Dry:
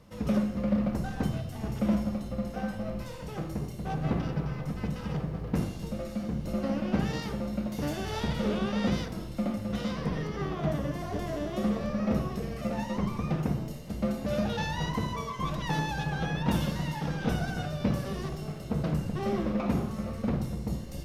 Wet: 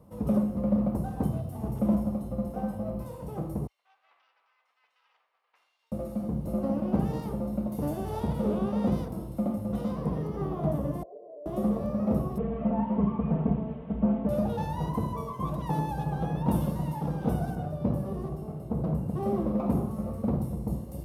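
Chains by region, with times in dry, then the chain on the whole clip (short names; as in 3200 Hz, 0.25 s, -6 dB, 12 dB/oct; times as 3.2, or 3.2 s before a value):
3.67–5.92 ladder high-pass 1700 Hz, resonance 25% + air absorption 200 m
11.03–11.46 Butterworth band-pass 510 Hz, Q 3.1 + compressor 2.5:1, threshold -45 dBFS
12.38–14.29 delta modulation 16 kbps, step -43 dBFS + comb 4.5 ms, depth 79%
17.55–19.09 high shelf 2300 Hz -7.5 dB + de-hum 50.1 Hz, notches 32
whole clip: HPF 43 Hz; band shelf 3200 Hz -15.5 dB 2.6 oct; gain +1.5 dB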